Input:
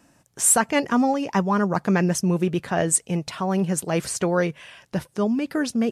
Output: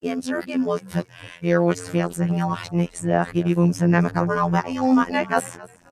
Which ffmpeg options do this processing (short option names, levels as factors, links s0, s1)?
-filter_complex "[0:a]areverse,acrossover=split=2100[s0][s1];[s0]crystalizer=i=3:c=0[s2];[s1]acompressor=threshold=0.0126:ratio=6[s3];[s2][s3]amix=inputs=2:normalize=0,afftfilt=real='hypot(re,im)*cos(PI*b)':imag='0':win_size=2048:overlap=0.75,asplit=3[s4][s5][s6];[s5]adelay=267,afreqshift=-68,volume=0.0944[s7];[s6]adelay=534,afreqshift=-136,volume=0.0282[s8];[s4][s7][s8]amix=inputs=3:normalize=0,volume=1.68"